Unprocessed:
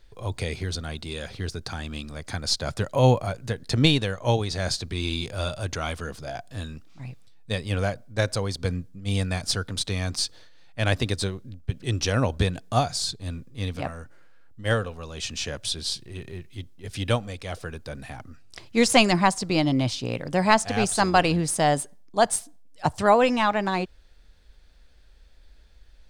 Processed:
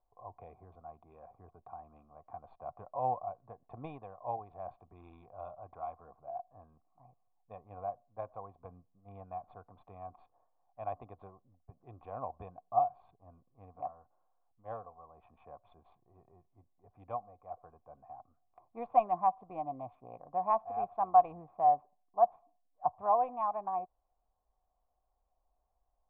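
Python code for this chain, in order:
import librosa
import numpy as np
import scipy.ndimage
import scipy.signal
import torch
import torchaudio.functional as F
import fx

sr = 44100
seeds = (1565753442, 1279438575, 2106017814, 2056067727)

y = fx.wiener(x, sr, points=15)
y = fx.formant_cascade(y, sr, vowel='a')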